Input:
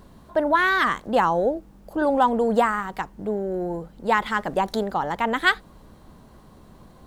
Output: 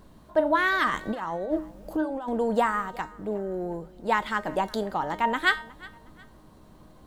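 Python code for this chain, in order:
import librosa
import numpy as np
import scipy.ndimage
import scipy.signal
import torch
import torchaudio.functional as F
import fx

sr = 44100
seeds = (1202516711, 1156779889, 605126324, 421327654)

y = fx.over_compress(x, sr, threshold_db=-27.0, ratio=-1.0, at=(0.9, 2.29))
y = fx.comb_fb(y, sr, f0_hz=310.0, decay_s=0.37, harmonics='all', damping=0.0, mix_pct=70)
y = fx.echo_feedback(y, sr, ms=362, feedback_pct=35, wet_db=-22)
y = y * 10.0 ** (5.5 / 20.0)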